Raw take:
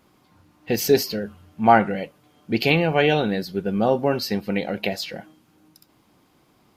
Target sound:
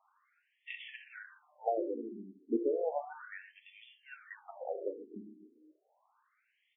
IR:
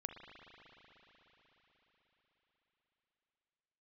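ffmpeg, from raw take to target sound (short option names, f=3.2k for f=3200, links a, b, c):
-filter_complex "[0:a]acrossover=split=510|4200[a][b][c];[a]aecho=1:1:289:0.316[d];[b]acompressor=threshold=-32dB:ratio=6[e];[d][e][c]amix=inputs=3:normalize=0[f];[1:a]atrim=start_sample=2205,afade=t=out:st=0.2:d=0.01,atrim=end_sample=9261[g];[f][g]afir=irnorm=-1:irlink=0,afftfilt=real='re*between(b*sr/1024,290*pow(2600/290,0.5+0.5*sin(2*PI*0.33*pts/sr))/1.41,290*pow(2600/290,0.5+0.5*sin(2*PI*0.33*pts/sr))*1.41)':imag='im*between(b*sr/1024,290*pow(2600/290,0.5+0.5*sin(2*PI*0.33*pts/sr))/1.41,290*pow(2600/290,0.5+0.5*sin(2*PI*0.33*pts/sr))*1.41)':win_size=1024:overlap=0.75,volume=-1.5dB"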